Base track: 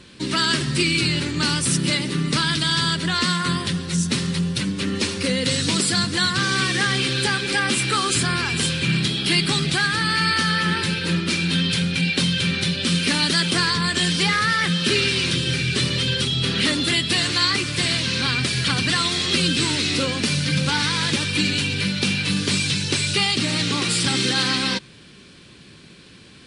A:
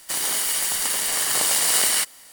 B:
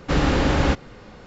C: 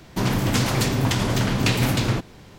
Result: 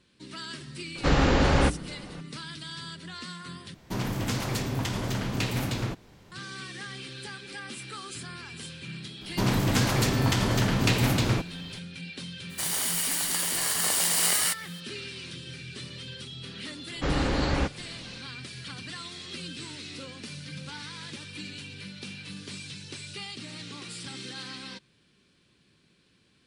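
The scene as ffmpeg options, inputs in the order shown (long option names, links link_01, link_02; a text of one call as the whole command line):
ffmpeg -i bed.wav -i cue0.wav -i cue1.wav -i cue2.wav -filter_complex "[2:a]asplit=2[link_01][link_02];[3:a]asplit=2[link_03][link_04];[0:a]volume=-19dB[link_05];[link_01]bandreject=frequency=60:width_type=h:width=6,bandreject=frequency=120:width_type=h:width=6,bandreject=frequency=180:width_type=h:width=6,bandreject=frequency=240:width_type=h:width=6,bandreject=frequency=300:width_type=h:width=6,bandreject=frequency=360:width_type=h:width=6,bandreject=frequency=420:width_type=h:width=6[link_06];[link_05]asplit=2[link_07][link_08];[link_07]atrim=end=3.744[link_09];[link_03]atrim=end=2.58,asetpts=PTS-STARTPTS,volume=-8.5dB[link_10];[link_08]atrim=start=6.316[link_11];[link_06]atrim=end=1.26,asetpts=PTS-STARTPTS,volume=-1.5dB,afade=type=in:duration=0.004:curve=hsin,afade=type=out:start_time=1.256:duration=0.004:curve=hsin,adelay=950[link_12];[link_04]atrim=end=2.58,asetpts=PTS-STARTPTS,volume=-3dB,afade=type=in:duration=0.004:curve=hsin,afade=type=out:start_time=2.576:duration=0.004:curve=hsin,adelay=9210[link_13];[1:a]atrim=end=2.32,asetpts=PTS-STARTPTS,volume=-5dB,afade=type=in:duration=0.02,afade=type=out:start_time=2.3:duration=0.02,adelay=12490[link_14];[link_02]atrim=end=1.26,asetpts=PTS-STARTPTS,volume=-7dB,afade=type=in:duration=0.004:curve=hsin,afade=type=out:start_time=1.256:duration=0.004:curve=hsin,adelay=16930[link_15];[link_09][link_10]acrossfade=duration=0.004:curve1=hsin:curve2=hsin[link_16];[link_16][link_11]acrossfade=duration=0.004:curve1=hsin:curve2=hsin[link_17];[link_17][link_12][link_13][link_14][link_15]amix=inputs=5:normalize=0" out.wav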